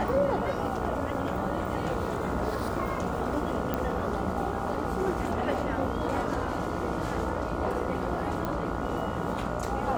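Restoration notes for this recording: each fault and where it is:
mains buzz 60 Hz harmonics 24 −35 dBFS
0:03.74: click −15 dBFS
0:08.45: click −18 dBFS

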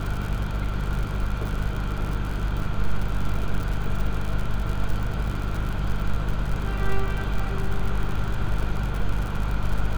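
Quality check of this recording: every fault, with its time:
surface crackle 80 per second −28 dBFS
mains hum 50 Hz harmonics 4 −28 dBFS
0:02.60: drop-out 2.9 ms

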